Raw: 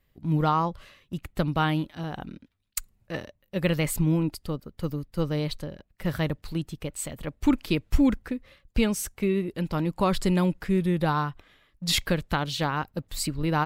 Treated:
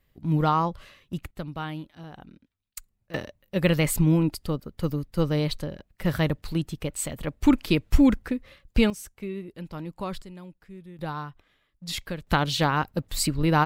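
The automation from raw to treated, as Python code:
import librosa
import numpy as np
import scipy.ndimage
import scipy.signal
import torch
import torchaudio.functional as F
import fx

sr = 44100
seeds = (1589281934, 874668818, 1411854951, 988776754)

y = fx.gain(x, sr, db=fx.steps((0.0, 1.0), (1.31, -9.0), (3.14, 3.0), (8.9, -9.0), (10.22, -20.0), (10.99, -8.0), (12.27, 4.0)))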